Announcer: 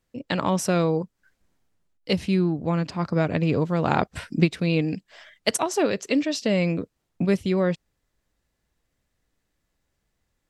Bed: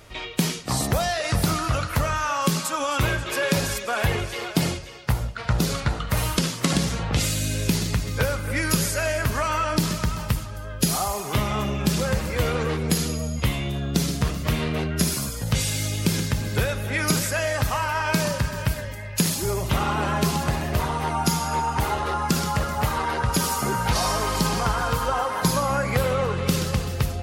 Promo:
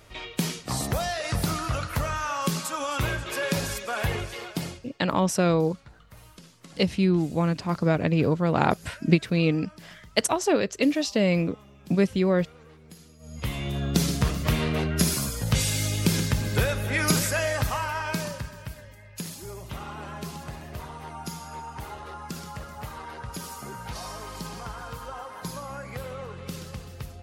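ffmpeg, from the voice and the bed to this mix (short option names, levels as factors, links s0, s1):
-filter_complex "[0:a]adelay=4700,volume=1[s0];[1:a]volume=11.2,afade=t=out:st=4.21:d=0.84:silence=0.0841395,afade=t=in:st=13.19:d=0.65:silence=0.0530884,afade=t=out:st=17.26:d=1.33:silence=0.211349[s1];[s0][s1]amix=inputs=2:normalize=0"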